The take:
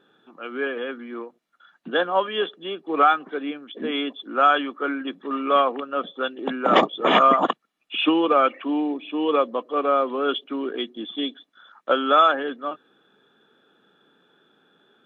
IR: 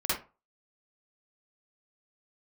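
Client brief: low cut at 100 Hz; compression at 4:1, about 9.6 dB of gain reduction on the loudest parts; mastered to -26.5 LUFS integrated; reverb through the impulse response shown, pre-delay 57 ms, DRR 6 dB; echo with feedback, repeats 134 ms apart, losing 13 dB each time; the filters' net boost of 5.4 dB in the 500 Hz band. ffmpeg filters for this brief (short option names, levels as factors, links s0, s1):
-filter_complex "[0:a]highpass=100,equalizer=f=500:t=o:g=6.5,acompressor=threshold=0.0891:ratio=4,aecho=1:1:134|268|402:0.224|0.0493|0.0108,asplit=2[s0][s1];[1:a]atrim=start_sample=2205,adelay=57[s2];[s1][s2]afir=irnorm=-1:irlink=0,volume=0.178[s3];[s0][s3]amix=inputs=2:normalize=0,volume=0.891"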